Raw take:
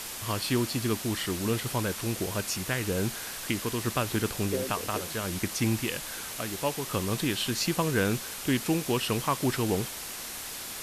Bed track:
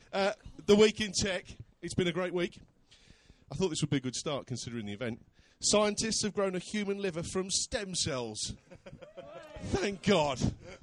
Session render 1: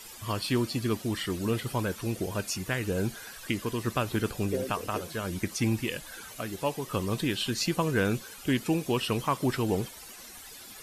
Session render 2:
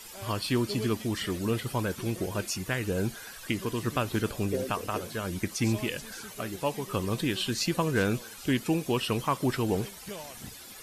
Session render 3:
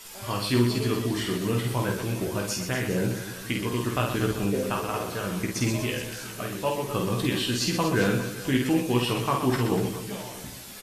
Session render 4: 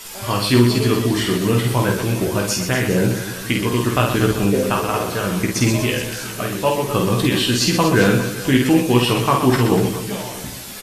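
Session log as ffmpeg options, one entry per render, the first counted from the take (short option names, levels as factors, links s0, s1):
-af "afftdn=nr=13:nf=-39"
-filter_complex "[1:a]volume=0.178[s0];[0:a][s0]amix=inputs=2:normalize=0"
-filter_complex "[0:a]asplit=2[s0][s1];[s1]adelay=16,volume=0.562[s2];[s0][s2]amix=inputs=2:normalize=0,asplit=2[s3][s4];[s4]aecho=0:1:50|125|237.5|406.2|659.4:0.631|0.398|0.251|0.158|0.1[s5];[s3][s5]amix=inputs=2:normalize=0"
-af "volume=2.82,alimiter=limit=0.708:level=0:latency=1"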